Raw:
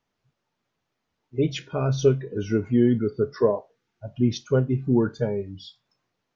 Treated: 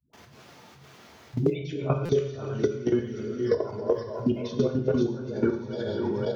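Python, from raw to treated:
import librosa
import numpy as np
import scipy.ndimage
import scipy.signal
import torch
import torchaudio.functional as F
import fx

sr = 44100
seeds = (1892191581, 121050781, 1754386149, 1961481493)

y = fx.reverse_delay_fb(x, sr, ms=260, feedback_pct=47, wet_db=-0.5)
y = fx.dispersion(y, sr, late='highs', ms=134.0, hz=370.0)
y = fx.low_shelf(y, sr, hz=480.0, db=-4.5, at=(2.05, 4.26))
y = fx.level_steps(y, sr, step_db=20)
y = scipy.signal.sosfilt(scipy.signal.butter(2, 43.0, 'highpass', fs=sr, output='sos'), y)
y = fx.low_shelf(y, sr, hz=63.0, db=-12.0)
y = fx.echo_heads(y, sr, ms=87, heads='first and third', feedback_pct=67, wet_db=-23.0)
y = fx.rev_gated(y, sr, seeds[0], gate_ms=180, shape='falling', drr_db=3.5)
y = fx.buffer_glitch(y, sr, at_s=(2.05,), block=256, repeats=6)
y = fx.band_squash(y, sr, depth_pct=100)
y = y * 10.0 ** (-1.0 / 20.0)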